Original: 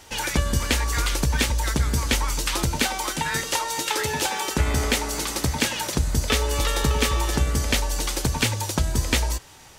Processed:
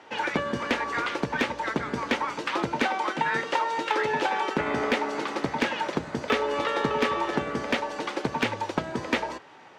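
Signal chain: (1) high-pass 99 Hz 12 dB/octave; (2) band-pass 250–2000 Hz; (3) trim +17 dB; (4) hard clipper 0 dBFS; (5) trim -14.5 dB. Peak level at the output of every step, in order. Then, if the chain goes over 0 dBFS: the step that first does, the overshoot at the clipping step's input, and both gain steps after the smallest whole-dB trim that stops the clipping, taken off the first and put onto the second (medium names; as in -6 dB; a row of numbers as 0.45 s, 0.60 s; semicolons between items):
-5.0 dBFS, -10.0 dBFS, +7.0 dBFS, 0.0 dBFS, -14.5 dBFS; step 3, 7.0 dB; step 3 +10 dB, step 5 -7.5 dB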